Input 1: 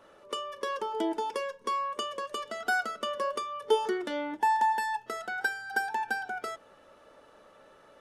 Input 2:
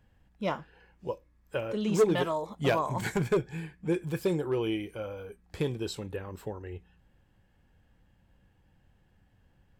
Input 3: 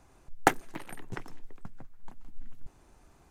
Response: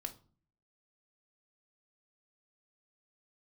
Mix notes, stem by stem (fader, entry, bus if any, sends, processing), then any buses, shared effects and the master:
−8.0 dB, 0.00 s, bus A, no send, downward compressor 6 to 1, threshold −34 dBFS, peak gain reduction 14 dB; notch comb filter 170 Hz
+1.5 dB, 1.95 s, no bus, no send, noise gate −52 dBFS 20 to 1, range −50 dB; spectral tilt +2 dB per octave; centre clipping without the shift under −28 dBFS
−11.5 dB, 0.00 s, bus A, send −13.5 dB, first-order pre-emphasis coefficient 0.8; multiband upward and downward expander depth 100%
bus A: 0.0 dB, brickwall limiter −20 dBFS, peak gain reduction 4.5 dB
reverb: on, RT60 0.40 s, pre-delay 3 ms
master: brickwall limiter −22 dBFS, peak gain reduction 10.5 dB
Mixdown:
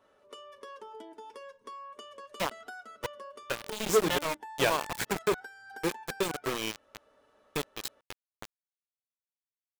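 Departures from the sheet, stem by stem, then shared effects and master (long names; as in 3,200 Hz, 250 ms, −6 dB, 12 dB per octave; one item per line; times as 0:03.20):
stem 3: muted
reverb: off
master: missing brickwall limiter −22 dBFS, peak gain reduction 10.5 dB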